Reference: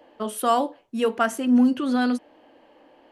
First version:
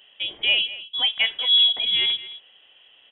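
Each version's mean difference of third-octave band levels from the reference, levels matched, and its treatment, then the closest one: 10.5 dB: on a send: delay 216 ms -16 dB; on the sum: frequency inversion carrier 3.6 kHz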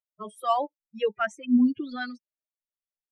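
8.0 dB: expander on every frequency bin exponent 3; distance through air 89 m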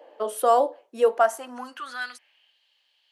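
4.5 dB: dynamic bell 2.7 kHz, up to -7 dB, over -43 dBFS, Q 1.1; high-pass sweep 500 Hz -> 3.7 kHz, 1.01–2.60 s; trim -1.5 dB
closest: third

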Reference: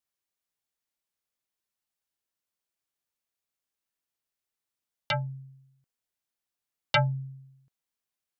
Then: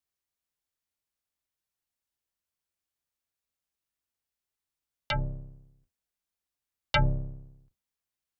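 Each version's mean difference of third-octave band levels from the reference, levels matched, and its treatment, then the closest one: 6.5 dB: octave divider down 2 oct, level +3 dB; de-hum 197.5 Hz, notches 5; trim -2 dB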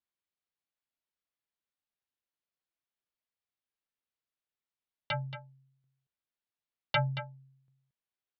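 3.5 dB: low-pass 4.3 kHz 24 dB/octave; on a send: delay 227 ms -11.5 dB; on the sum: trim -5 dB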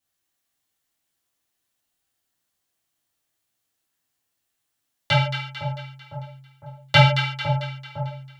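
13.5 dB: two-band feedback delay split 1 kHz, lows 506 ms, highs 223 ms, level -8 dB; gated-style reverb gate 180 ms falling, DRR -7 dB; trim +2 dB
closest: second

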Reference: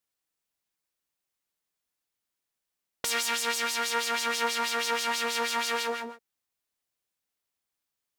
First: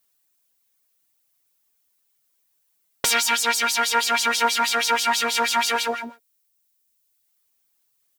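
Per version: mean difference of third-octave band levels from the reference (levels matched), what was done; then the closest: 3.0 dB: reverb removal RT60 1.2 s; comb 7.3 ms, depth 52%; added noise violet -78 dBFS; trim +8.5 dB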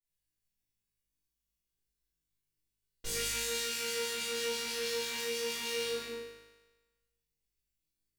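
8.0 dB: amplifier tone stack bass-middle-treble 10-0-1; on a send: flutter echo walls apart 3.3 m, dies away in 1.2 s; on the sum: simulated room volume 87 m³, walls mixed, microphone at 3.2 m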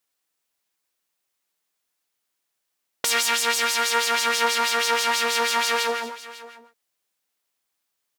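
1.5 dB: bass shelf 180 Hz -10.5 dB; on a send: delay 549 ms -17 dB; on the sum: trim +7 dB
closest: third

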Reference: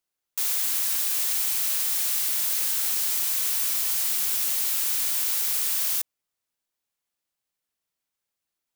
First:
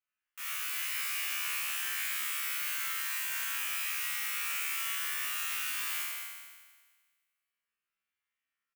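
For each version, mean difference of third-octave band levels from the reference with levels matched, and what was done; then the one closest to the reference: 5.0 dB: high-order bell 1.8 kHz +15 dB; feedback comb 71 Hz, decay 1.5 s, harmonics all, mix 100%; delay 221 ms -8.5 dB; trim +3 dB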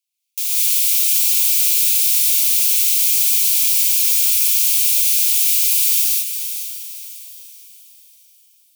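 10.5 dB: steep high-pass 2.2 kHz 96 dB/octave; echo that smears into a reverb 488 ms, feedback 42%, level -9 dB; gated-style reverb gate 230 ms rising, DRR -4.5 dB; trim +3.5 dB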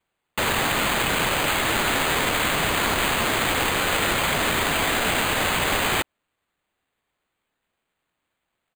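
16.0 dB: comb 5.7 ms, depth 87%; in parallel at +3 dB: peak limiter -19 dBFS, peak gain reduction 9 dB; on the sum: sample-and-hold 8×; trim -4.5 dB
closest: first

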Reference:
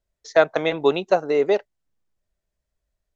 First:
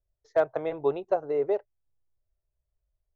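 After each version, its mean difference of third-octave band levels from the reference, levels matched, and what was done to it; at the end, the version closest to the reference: 4.0 dB: FFT filter 130 Hz 0 dB, 180 Hz -18 dB, 380 Hz -7 dB, 660 Hz -7 dB, 1 kHz -9 dB, 3.4 kHz -23 dB, 7.9 kHz -26 dB; hard clipper -14 dBFS, distortion -34 dB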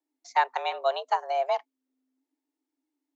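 8.5 dB: frequency shift +260 Hz; trim -7.5 dB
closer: first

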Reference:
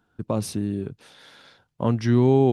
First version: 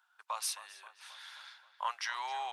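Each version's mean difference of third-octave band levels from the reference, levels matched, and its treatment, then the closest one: 17.5 dB: steep high-pass 900 Hz 36 dB/octave; filtered feedback delay 266 ms, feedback 63%, low-pass 3.6 kHz, level -13.5 dB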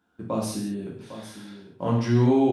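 6.0 dB: high-pass 170 Hz 6 dB/octave; delay 803 ms -12.5 dB; gated-style reverb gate 230 ms falling, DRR -3.5 dB; trim -5 dB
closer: second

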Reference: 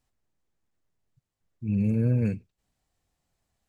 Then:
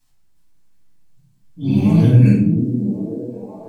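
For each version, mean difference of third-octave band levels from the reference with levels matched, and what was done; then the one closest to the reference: 6.0 dB: ever faster or slower copies 352 ms, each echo +5 st, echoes 3, each echo -6 dB; treble shelf 2.4 kHz +10.5 dB; on a send: repeats whose band climbs or falls 543 ms, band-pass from 250 Hz, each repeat 0.7 oct, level -1 dB; on the sum: simulated room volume 790 m³, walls furnished, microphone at 9.1 m; trim -3.5 dB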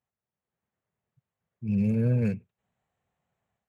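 1.5 dB: local Wiener filter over 9 samples; high-pass 120 Hz 12 dB/octave; peaking EQ 300 Hz -13 dB 0.35 oct; level rider gain up to 8.5 dB; trim -6 dB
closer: second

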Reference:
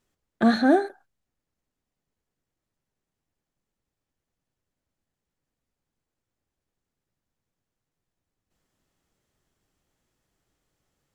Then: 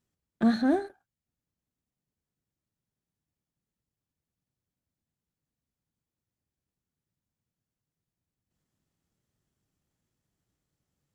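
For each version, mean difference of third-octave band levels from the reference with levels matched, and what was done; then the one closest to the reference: 2.5 dB: partial rectifier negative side -3 dB; high-pass 160 Hz 6 dB/octave; tone controls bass +14 dB, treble +3 dB; trim -8 dB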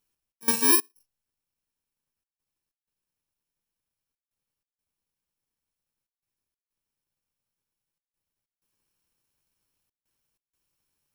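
16.0 dB: bit-reversed sample order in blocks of 64 samples; trance gate "xx.xx.xxxxxx" 94 bpm -24 dB; bass shelf 410 Hz -10 dB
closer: first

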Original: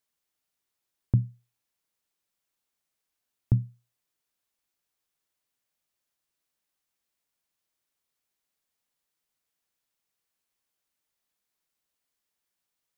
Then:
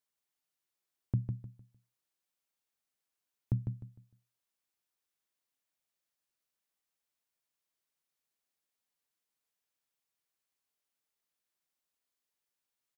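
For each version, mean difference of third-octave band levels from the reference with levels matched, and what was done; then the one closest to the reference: 4.0 dB: bass shelf 120 Hz -5.5 dB; on a send: feedback delay 152 ms, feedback 28%, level -6 dB; on the sum: trim -6 dB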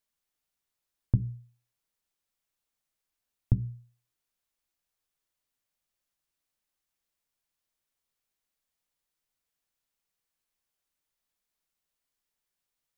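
1.5 dB: bass shelf 61 Hz +11.5 dB; hum notches 60/120/180/240/300/360/420 Hz; trim -2.5 dB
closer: second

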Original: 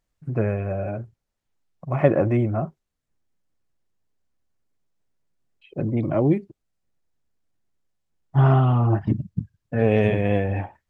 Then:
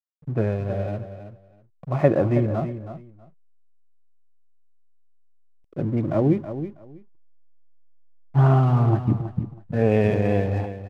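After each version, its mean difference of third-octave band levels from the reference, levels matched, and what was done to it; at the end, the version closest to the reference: 3.0 dB: treble shelf 2.3 kHz -5.5 dB; hysteresis with a dead band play -37.5 dBFS; feedback delay 323 ms, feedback 18%, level -11 dB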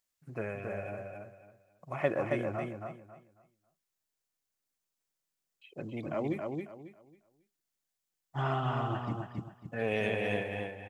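7.5 dB: fade out at the end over 0.55 s; tilt EQ +3.5 dB/octave; on a send: feedback delay 273 ms, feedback 26%, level -4 dB; on the sum: trim -8.5 dB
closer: first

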